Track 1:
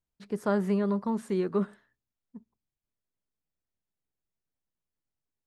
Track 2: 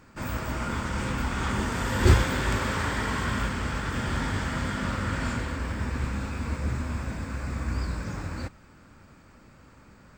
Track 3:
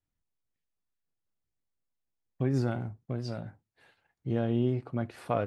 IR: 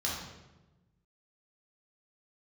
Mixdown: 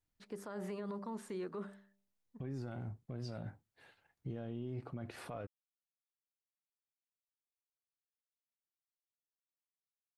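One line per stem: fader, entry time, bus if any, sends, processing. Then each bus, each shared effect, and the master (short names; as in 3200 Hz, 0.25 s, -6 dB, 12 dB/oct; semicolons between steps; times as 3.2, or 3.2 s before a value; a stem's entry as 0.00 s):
-5.0 dB, 0.00 s, no send, low shelf 210 Hz -11.5 dB; de-hum 98.94 Hz, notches 9
off
-1.0 dB, 0.00 s, no send, dry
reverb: off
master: limiter -34 dBFS, peak gain reduction 17 dB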